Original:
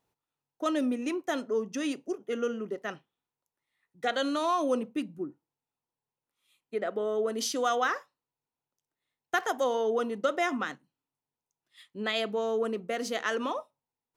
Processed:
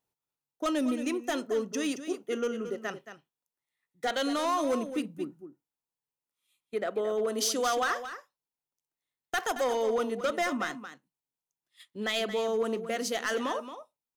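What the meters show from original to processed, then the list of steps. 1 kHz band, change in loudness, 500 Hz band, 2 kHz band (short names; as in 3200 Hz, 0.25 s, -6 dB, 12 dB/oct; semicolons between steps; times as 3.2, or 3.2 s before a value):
-0.5 dB, 0.0 dB, 0.0 dB, 0.0 dB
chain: gate -53 dBFS, range -8 dB; high shelf 5000 Hz +7.5 dB; overloaded stage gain 23 dB; on a send: echo 0.224 s -11 dB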